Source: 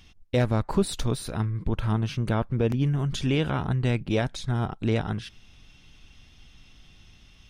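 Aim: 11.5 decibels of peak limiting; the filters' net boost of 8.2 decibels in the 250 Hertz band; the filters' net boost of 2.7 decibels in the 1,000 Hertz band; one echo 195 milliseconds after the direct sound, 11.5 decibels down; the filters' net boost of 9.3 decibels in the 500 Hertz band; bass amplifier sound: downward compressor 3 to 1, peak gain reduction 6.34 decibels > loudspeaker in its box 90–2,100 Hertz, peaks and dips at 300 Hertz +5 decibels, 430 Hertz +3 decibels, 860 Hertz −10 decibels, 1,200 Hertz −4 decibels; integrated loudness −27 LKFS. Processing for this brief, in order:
parametric band 250 Hz +6 dB
parametric band 500 Hz +5.5 dB
parametric band 1,000 Hz +8.5 dB
brickwall limiter −16.5 dBFS
single-tap delay 195 ms −11.5 dB
downward compressor 3 to 1, threshold −28 dBFS
loudspeaker in its box 90–2,100 Hz, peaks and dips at 300 Hz +5 dB, 430 Hz +3 dB, 860 Hz −10 dB, 1,200 Hz −4 dB
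level +5 dB

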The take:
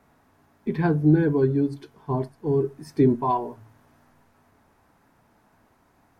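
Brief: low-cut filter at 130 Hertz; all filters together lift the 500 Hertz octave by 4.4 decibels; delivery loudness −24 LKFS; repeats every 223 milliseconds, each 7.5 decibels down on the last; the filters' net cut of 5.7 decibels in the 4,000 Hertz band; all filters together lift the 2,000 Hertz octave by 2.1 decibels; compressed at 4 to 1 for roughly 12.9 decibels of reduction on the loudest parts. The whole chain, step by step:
high-pass filter 130 Hz
parametric band 500 Hz +6 dB
parametric band 2,000 Hz +4 dB
parametric band 4,000 Hz −8.5 dB
downward compressor 4 to 1, threshold −28 dBFS
repeating echo 223 ms, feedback 42%, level −7.5 dB
level +7.5 dB

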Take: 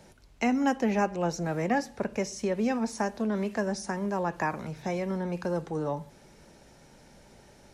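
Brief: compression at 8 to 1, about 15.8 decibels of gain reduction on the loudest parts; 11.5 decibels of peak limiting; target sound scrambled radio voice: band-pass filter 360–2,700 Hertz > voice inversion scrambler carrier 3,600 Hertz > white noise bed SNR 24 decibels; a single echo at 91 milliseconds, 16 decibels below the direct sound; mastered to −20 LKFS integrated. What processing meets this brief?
downward compressor 8 to 1, threshold −38 dBFS
brickwall limiter −34 dBFS
band-pass filter 360–2,700 Hz
single-tap delay 91 ms −16 dB
voice inversion scrambler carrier 3,600 Hz
white noise bed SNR 24 dB
level +24.5 dB

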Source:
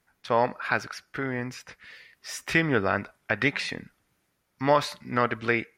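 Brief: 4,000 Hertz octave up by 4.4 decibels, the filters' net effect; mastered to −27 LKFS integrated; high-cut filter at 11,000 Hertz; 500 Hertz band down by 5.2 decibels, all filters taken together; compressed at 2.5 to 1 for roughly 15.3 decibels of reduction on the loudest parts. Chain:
low-pass filter 11,000 Hz
parametric band 500 Hz −6.5 dB
parametric band 4,000 Hz +5.5 dB
downward compressor 2.5 to 1, threshold −43 dBFS
level +14.5 dB

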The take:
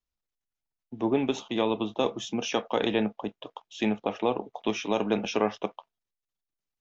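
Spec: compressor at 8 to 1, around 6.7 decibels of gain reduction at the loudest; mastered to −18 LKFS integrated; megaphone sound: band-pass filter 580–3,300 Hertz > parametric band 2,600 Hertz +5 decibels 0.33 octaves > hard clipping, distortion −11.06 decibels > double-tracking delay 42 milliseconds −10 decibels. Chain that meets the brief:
downward compressor 8 to 1, threshold −27 dBFS
band-pass filter 580–3,300 Hz
parametric band 2,600 Hz +5 dB 0.33 octaves
hard clipping −30 dBFS
double-tracking delay 42 ms −10 dB
level +21.5 dB

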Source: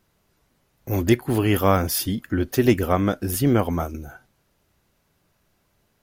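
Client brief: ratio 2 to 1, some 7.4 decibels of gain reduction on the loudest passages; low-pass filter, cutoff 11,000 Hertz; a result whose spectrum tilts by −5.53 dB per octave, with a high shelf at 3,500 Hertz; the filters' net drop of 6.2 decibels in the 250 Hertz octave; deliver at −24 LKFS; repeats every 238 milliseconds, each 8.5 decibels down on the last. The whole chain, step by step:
low-pass filter 11,000 Hz
parametric band 250 Hz −8.5 dB
high-shelf EQ 3,500 Hz −4 dB
downward compressor 2 to 1, threshold −29 dBFS
repeating echo 238 ms, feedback 38%, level −8.5 dB
level +6 dB

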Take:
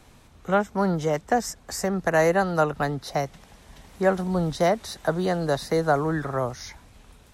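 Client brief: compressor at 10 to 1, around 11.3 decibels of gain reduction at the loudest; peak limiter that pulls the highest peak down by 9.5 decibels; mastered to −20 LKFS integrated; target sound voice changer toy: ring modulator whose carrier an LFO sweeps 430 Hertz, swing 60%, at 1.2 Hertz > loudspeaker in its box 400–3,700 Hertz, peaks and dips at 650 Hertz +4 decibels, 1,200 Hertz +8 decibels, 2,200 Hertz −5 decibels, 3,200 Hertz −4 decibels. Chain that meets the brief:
downward compressor 10 to 1, threshold −27 dBFS
brickwall limiter −25 dBFS
ring modulator whose carrier an LFO sweeps 430 Hz, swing 60%, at 1.2 Hz
loudspeaker in its box 400–3,700 Hz, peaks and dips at 650 Hz +4 dB, 1,200 Hz +8 dB, 2,200 Hz −5 dB, 3,200 Hz −4 dB
level +18 dB

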